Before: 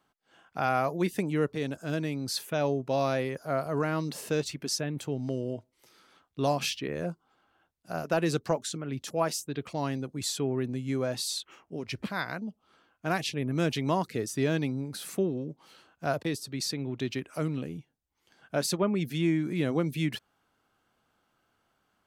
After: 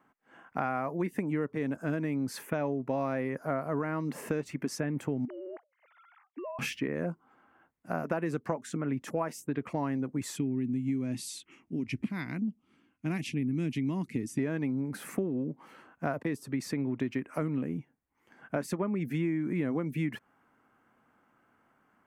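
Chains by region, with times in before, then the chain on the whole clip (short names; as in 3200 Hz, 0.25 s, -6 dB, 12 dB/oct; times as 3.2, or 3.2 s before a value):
5.25–6.59 sine-wave speech + compressor 10:1, threshold -39 dBFS + low shelf 340 Hz -9 dB
10.36–14.39 brick-wall FIR low-pass 12000 Hz + band shelf 880 Hz -15.5 dB 2.3 oct
whole clip: ten-band EQ 125 Hz +5 dB, 250 Hz +12 dB, 500 Hz +4 dB, 1000 Hz +8 dB, 2000 Hz +11 dB, 4000 Hz -11 dB; compressor, threshold -24 dBFS; gain -4 dB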